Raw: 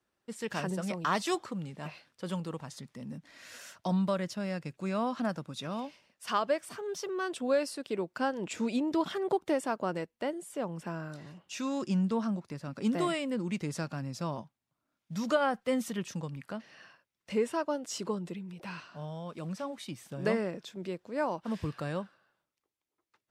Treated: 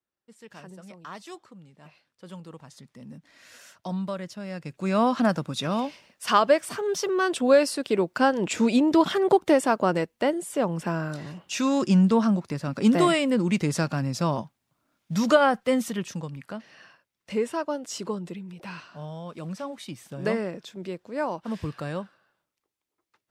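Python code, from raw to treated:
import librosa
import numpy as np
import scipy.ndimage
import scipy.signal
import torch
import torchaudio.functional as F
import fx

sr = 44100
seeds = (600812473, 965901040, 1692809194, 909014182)

y = fx.gain(x, sr, db=fx.line((1.69, -11.0), (3.02, -1.5), (4.45, -1.5), (5.01, 10.0), (15.21, 10.0), (16.3, 3.0)))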